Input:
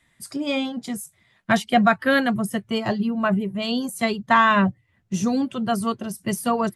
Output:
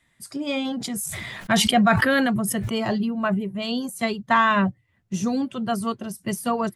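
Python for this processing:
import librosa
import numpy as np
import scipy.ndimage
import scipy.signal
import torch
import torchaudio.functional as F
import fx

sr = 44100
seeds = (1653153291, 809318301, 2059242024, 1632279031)

y = fx.sustainer(x, sr, db_per_s=21.0, at=(0.64, 3.05), fade=0.02)
y = F.gain(torch.from_numpy(y), -2.0).numpy()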